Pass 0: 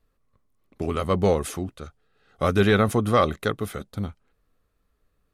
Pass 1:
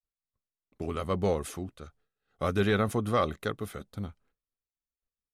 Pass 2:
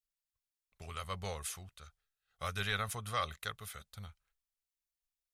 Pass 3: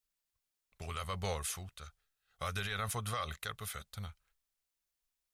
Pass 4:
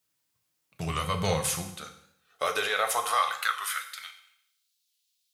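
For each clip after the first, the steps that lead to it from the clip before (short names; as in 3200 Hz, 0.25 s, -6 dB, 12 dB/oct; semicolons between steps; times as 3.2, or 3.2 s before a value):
expander -53 dBFS; gain -7 dB
passive tone stack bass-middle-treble 10-0-10; gain +2 dB
limiter -31 dBFS, peak gain reduction 10.5 dB; short-mantissa float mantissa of 6-bit; gain +4.5 dB
high-pass sweep 140 Hz -> 3700 Hz, 1.43–4.62; on a send at -4 dB: reverb RT60 0.75 s, pre-delay 3 ms; on the sum: record warp 45 rpm, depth 100 cents; gain +8.5 dB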